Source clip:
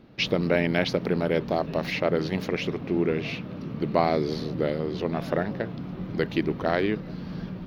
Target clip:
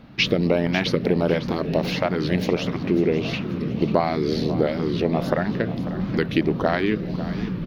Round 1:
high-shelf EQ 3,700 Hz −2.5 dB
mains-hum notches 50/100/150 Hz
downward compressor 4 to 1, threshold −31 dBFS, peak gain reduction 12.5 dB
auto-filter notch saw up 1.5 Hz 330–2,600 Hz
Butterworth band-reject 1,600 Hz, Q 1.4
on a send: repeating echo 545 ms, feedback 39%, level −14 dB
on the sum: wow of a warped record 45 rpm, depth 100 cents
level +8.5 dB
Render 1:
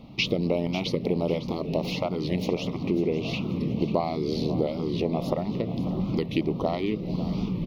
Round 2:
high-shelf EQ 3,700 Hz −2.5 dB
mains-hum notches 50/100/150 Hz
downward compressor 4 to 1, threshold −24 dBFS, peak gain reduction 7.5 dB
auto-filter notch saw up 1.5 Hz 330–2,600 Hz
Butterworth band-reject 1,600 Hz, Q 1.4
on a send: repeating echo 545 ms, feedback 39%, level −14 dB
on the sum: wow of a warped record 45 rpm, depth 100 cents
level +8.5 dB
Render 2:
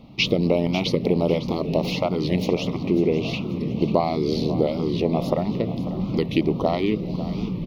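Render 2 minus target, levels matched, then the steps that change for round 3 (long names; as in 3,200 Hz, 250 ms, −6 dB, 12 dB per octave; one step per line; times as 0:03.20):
2,000 Hz band −4.5 dB
remove: Butterworth band-reject 1,600 Hz, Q 1.4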